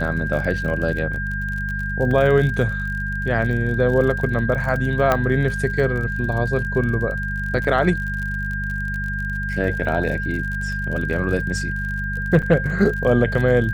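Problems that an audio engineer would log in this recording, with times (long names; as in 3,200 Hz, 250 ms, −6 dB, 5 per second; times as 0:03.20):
surface crackle 48 per second −28 dBFS
mains hum 50 Hz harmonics 4 −27 dBFS
whistle 1,600 Hz −26 dBFS
0:02.11: drop-out 3 ms
0:05.12: click −5 dBFS
0:12.42–0:12.43: drop-out 6.7 ms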